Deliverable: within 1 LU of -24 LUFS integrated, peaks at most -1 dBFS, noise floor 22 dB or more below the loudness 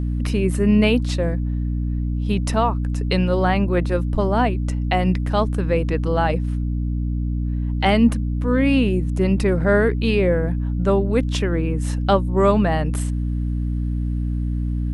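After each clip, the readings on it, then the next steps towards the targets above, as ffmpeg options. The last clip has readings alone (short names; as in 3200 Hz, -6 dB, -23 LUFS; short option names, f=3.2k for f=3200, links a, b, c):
hum 60 Hz; harmonics up to 300 Hz; hum level -20 dBFS; loudness -20.5 LUFS; peak -4.0 dBFS; loudness target -24.0 LUFS
-> -af "bandreject=f=60:t=h:w=6,bandreject=f=120:t=h:w=6,bandreject=f=180:t=h:w=6,bandreject=f=240:t=h:w=6,bandreject=f=300:t=h:w=6"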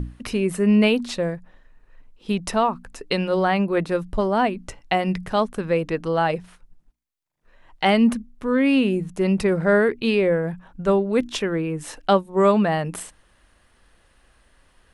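hum none; loudness -21.5 LUFS; peak -5.5 dBFS; loudness target -24.0 LUFS
-> -af "volume=-2.5dB"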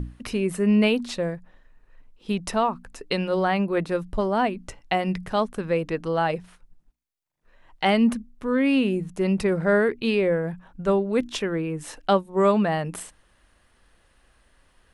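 loudness -24.0 LUFS; peak -8.0 dBFS; noise floor -64 dBFS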